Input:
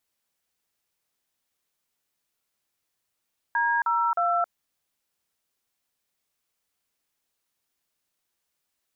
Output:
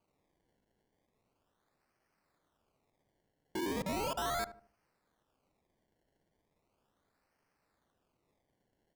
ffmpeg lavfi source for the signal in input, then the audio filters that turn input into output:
-f lavfi -i "aevalsrc='0.0668*clip(min(mod(t,0.311),0.27-mod(t,0.311))/0.002,0,1)*(eq(floor(t/0.311),0)*(sin(2*PI*941*mod(t,0.311))+sin(2*PI*1633*mod(t,0.311)))+eq(floor(t/0.311),1)*(sin(2*PI*941*mod(t,0.311))+sin(2*PI*1336*mod(t,0.311)))+eq(floor(t/0.311),2)*(sin(2*PI*697*mod(t,0.311))+sin(2*PI*1336*mod(t,0.311))))':d=0.933:s=44100"
-filter_complex "[0:a]acrusher=samples=24:mix=1:aa=0.000001:lfo=1:lforange=24:lforate=0.37,asoftclip=type=tanh:threshold=-34dB,asplit=2[a][b];[b]adelay=76,lowpass=f=980:p=1,volume=-12dB,asplit=2[c][d];[d]adelay=76,lowpass=f=980:p=1,volume=0.4,asplit=2[e][f];[f]adelay=76,lowpass=f=980:p=1,volume=0.4,asplit=2[g][h];[h]adelay=76,lowpass=f=980:p=1,volume=0.4[i];[a][c][e][g][i]amix=inputs=5:normalize=0"

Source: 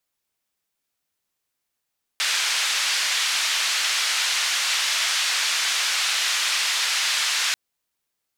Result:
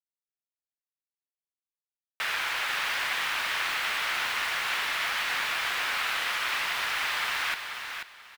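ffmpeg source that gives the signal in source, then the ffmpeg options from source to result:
-f lavfi -i "anoisesrc=c=white:d=5.34:r=44100:seed=1,highpass=f=1500,lowpass=f=5100,volume=-10.6dB"
-af "lowpass=2k,aeval=exprs='val(0)*gte(abs(val(0)),0.0178)':c=same,aecho=1:1:487|974|1461:0.447|0.103|0.0236"

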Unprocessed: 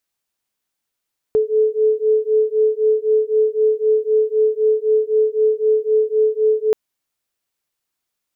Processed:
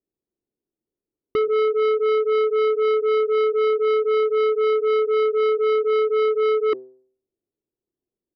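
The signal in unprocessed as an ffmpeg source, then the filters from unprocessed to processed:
-f lavfi -i "aevalsrc='0.15*(sin(2*PI*431*t)+sin(2*PI*434.9*t))':d=5.38:s=44100"
-af "lowpass=f=370:t=q:w=3.5,bandreject=f=128.3:t=h:w=4,bandreject=f=256.6:t=h:w=4,bandreject=f=384.9:t=h:w=4,bandreject=f=513.2:t=h:w=4,bandreject=f=641.5:t=h:w=4,bandreject=f=769.8:t=h:w=4,bandreject=f=898.1:t=h:w=4,bandreject=f=1.0264k:t=h:w=4,bandreject=f=1.1547k:t=h:w=4,bandreject=f=1.283k:t=h:w=4,bandreject=f=1.4113k:t=h:w=4,bandreject=f=1.5396k:t=h:w=4,bandreject=f=1.6679k:t=h:w=4,bandreject=f=1.7962k:t=h:w=4,bandreject=f=1.9245k:t=h:w=4,bandreject=f=2.0528k:t=h:w=4,bandreject=f=2.1811k:t=h:w=4,bandreject=f=2.3094k:t=h:w=4,bandreject=f=2.4377k:t=h:w=4,bandreject=f=2.566k:t=h:w=4,bandreject=f=2.6943k:t=h:w=4,bandreject=f=2.8226k:t=h:w=4,bandreject=f=2.9509k:t=h:w=4,bandreject=f=3.0792k:t=h:w=4,bandreject=f=3.2075k:t=h:w=4,bandreject=f=3.3358k:t=h:w=4,bandreject=f=3.4641k:t=h:w=4,aresample=11025,asoftclip=type=tanh:threshold=-17.5dB,aresample=44100"

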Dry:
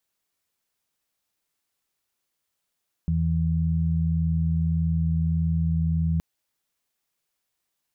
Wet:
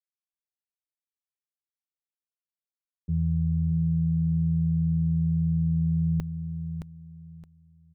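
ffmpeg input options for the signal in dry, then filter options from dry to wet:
-f lavfi -i "aevalsrc='0.0631*sin(2*PI*81.7*t)+0.075*sin(2*PI*163.4*t)':d=3.12:s=44100"
-filter_complex "[0:a]agate=range=-33dB:threshold=-21dB:ratio=3:detection=peak,asplit=2[a][b];[b]aecho=0:1:619|1238|1857:0.376|0.0977|0.0254[c];[a][c]amix=inputs=2:normalize=0"

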